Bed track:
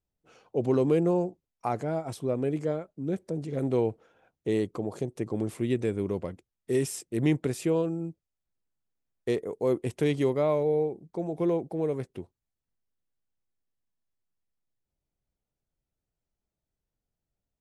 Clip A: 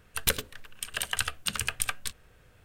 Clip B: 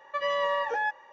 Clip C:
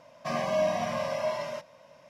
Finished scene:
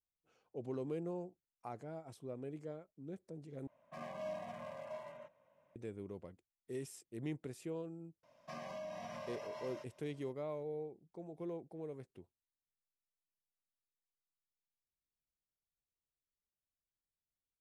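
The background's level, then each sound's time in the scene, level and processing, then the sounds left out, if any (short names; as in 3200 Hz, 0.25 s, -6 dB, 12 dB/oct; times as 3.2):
bed track -17 dB
3.67 replace with C -16.5 dB + Wiener smoothing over 9 samples
8.23 add C -14 dB + compressor, threshold -28 dBFS
not used: A, B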